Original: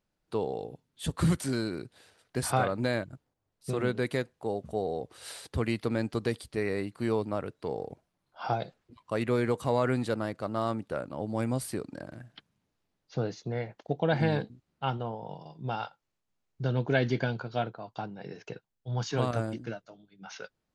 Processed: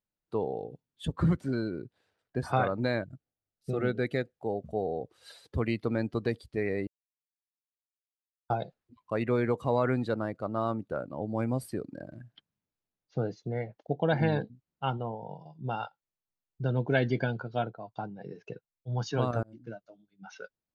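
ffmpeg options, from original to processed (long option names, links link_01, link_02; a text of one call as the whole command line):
ffmpeg -i in.wav -filter_complex "[0:a]asettb=1/sr,asplit=3[link_01][link_02][link_03];[link_01]atrim=end=1.054[link_04];[link_02]atrim=start=1.05:end=2.51,asetpts=PTS-STARTPTS,afade=type=in:duration=0.004:curve=qsin,afade=type=out:start_time=1.456:duration=0.004:curve=qsin,highshelf=frequency=3900:gain=-10[link_05];[link_03]atrim=start=2.506[link_06];[link_04][link_05]acrossfade=duration=0.004:curve1=hsin:curve2=qsin[link_07];[link_07][link_06]acrossfade=duration=0.004:curve1=qsin:curve2=hsin,asettb=1/sr,asplit=3[link_08][link_09][link_10];[link_08]atrim=end=3.064[link_11];[link_09]atrim=start=3.06:end=4.37,asetpts=PTS-STARTPTS,afade=type=in:duration=0.004:curve=qsin,afade=type=out:start_time=1.306:duration=0.004:curve=qsin,asuperstop=centerf=1000:order=8:qfactor=3.9[link_12];[link_10]atrim=start=4.366[link_13];[link_11][link_12]acrossfade=duration=0.004:curve1=hsin:curve2=qsin[link_14];[link_14][link_13]acrossfade=duration=0.004:curve1=qsin:curve2=hsin,asplit=4[link_15][link_16][link_17][link_18];[link_15]atrim=end=6.87,asetpts=PTS-STARTPTS,afade=type=out:start_time=6.866:duration=0.004:curve=hsin[link_19];[link_16]atrim=start=6.87:end=8.5,asetpts=PTS-STARTPTS,volume=0[link_20];[link_17]atrim=start=8.5:end=19.43,asetpts=PTS-STARTPTS,afade=type=in:duration=0.004:curve=hsin,afade=type=out:start_time=10.926:duration=0.004:curve=hsin[link_21];[link_18]atrim=start=19.43,asetpts=PTS-STARTPTS,afade=type=in:duration=0.44[link_22];[link_19][link_20][link_21][link_22]concat=n=4:v=0:a=1,equalizer=frequency=9000:width_type=o:width=0.3:gain=-6,afftdn=noise_reduction=13:noise_floor=-41" out.wav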